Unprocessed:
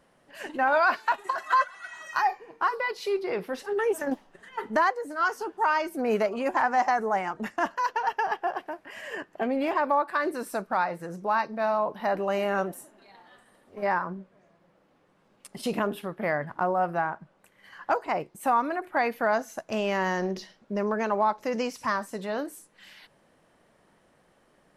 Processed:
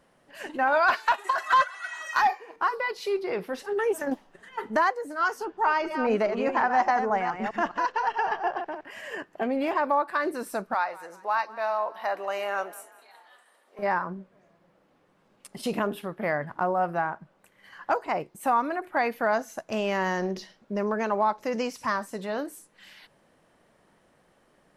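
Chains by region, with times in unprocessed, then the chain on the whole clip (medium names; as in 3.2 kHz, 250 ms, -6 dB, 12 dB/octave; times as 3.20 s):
0.88–2.56 s: high-pass 270 Hz + treble shelf 7.2 kHz +8 dB + overdrive pedal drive 10 dB, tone 4.5 kHz, clips at -12.5 dBFS
5.45–8.85 s: chunks repeated in reverse 206 ms, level -7 dB + low-pass 5.4 kHz + bass shelf 61 Hz +11 dB
10.74–13.79 s: high-pass 620 Hz + frequency-shifting echo 188 ms, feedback 42%, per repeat +31 Hz, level -19.5 dB
whole clip: none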